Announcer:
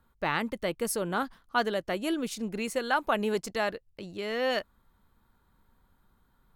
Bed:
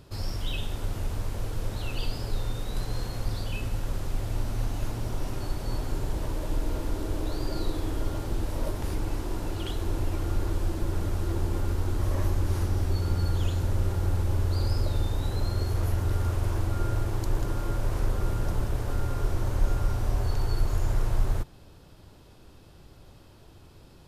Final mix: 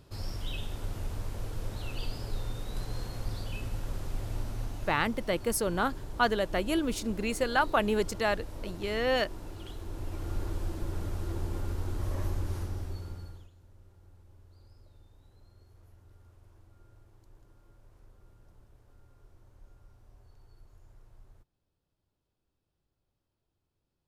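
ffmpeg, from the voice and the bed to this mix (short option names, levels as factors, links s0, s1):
-filter_complex "[0:a]adelay=4650,volume=1.12[s0];[1:a]afade=t=out:st=4.33:d=0.86:silence=0.501187,afade=t=in:st=9.89:d=0.48:silence=0.562341,afade=t=out:st=12.36:d=1.13:silence=0.0562341[s1];[s0][s1]amix=inputs=2:normalize=0"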